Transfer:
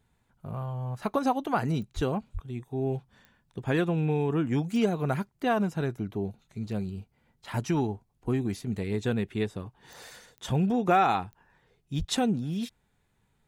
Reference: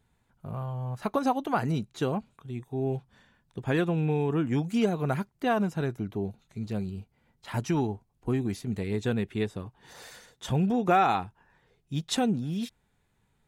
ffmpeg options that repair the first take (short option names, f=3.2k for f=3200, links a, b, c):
-filter_complex "[0:a]adeclick=t=4,asplit=3[a][b][c];[a]afade=t=out:st=1.95:d=0.02[d];[b]highpass=f=140:w=0.5412,highpass=f=140:w=1.3066,afade=t=in:st=1.95:d=0.02,afade=t=out:st=2.07:d=0.02[e];[c]afade=t=in:st=2.07:d=0.02[f];[d][e][f]amix=inputs=3:normalize=0,asplit=3[g][h][i];[g]afade=t=out:st=2.33:d=0.02[j];[h]highpass=f=140:w=0.5412,highpass=f=140:w=1.3066,afade=t=in:st=2.33:d=0.02,afade=t=out:st=2.45:d=0.02[k];[i]afade=t=in:st=2.45:d=0.02[l];[j][k][l]amix=inputs=3:normalize=0,asplit=3[m][n][o];[m]afade=t=out:st=11.98:d=0.02[p];[n]highpass=f=140:w=0.5412,highpass=f=140:w=1.3066,afade=t=in:st=11.98:d=0.02,afade=t=out:st=12.1:d=0.02[q];[o]afade=t=in:st=12.1:d=0.02[r];[p][q][r]amix=inputs=3:normalize=0"